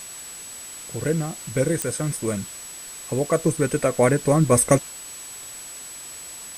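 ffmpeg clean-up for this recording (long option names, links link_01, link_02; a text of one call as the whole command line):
ffmpeg -i in.wav -af "adeclick=threshold=4,bandreject=frequency=7900:width=30,afwtdn=0.01" out.wav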